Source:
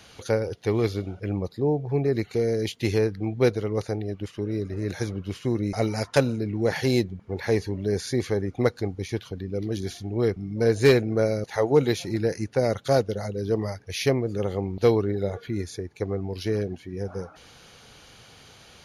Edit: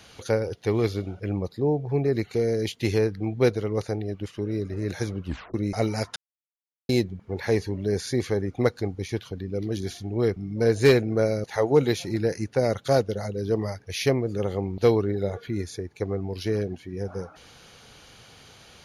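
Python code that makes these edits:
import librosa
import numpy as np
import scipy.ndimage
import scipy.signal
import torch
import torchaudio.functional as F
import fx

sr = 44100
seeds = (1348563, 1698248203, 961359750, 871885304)

y = fx.edit(x, sr, fx.tape_stop(start_s=5.25, length_s=0.29),
    fx.silence(start_s=6.16, length_s=0.73), tone=tone)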